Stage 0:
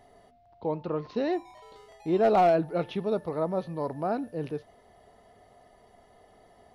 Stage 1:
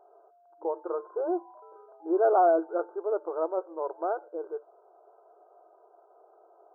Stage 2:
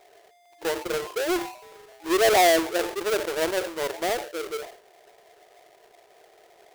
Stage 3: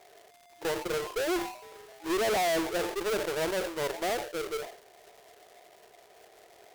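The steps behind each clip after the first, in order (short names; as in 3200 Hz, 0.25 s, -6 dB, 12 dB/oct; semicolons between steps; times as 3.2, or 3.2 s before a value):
FFT band-pass 320–1600 Hz
half-waves squared off; sustainer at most 110 dB/s
crackle 200/s -43 dBFS; tube stage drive 26 dB, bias 0.4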